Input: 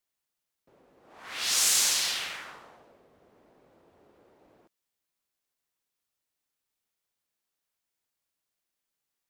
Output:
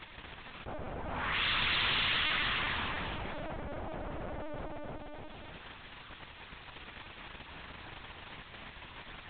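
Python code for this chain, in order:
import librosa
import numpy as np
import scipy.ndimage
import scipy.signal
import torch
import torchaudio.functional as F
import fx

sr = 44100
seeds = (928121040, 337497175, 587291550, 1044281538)

p1 = fx.low_shelf(x, sr, hz=480.0, db=-8.5)
p2 = p1 + 0.38 * np.pad(p1, (int(3.3 * sr / 1000.0), 0))[:len(p1)]
p3 = fx.vibrato(p2, sr, rate_hz=4.6, depth_cents=41.0)
p4 = fx.dmg_crackle(p3, sr, seeds[0], per_s=19.0, level_db=-59.0)
p5 = fx.air_absorb(p4, sr, metres=180.0)
p6 = p5 + fx.echo_feedback(p5, sr, ms=299, feedback_pct=26, wet_db=-4.5, dry=0)
p7 = fx.lpc_vocoder(p6, sr, seeds[1], excitation='pitch_kept', order=8)
p8 = fx.env_flatten(p7, sr, amount_pct=70)
y = p8 * 10.0 ** (3.0 / 20.0)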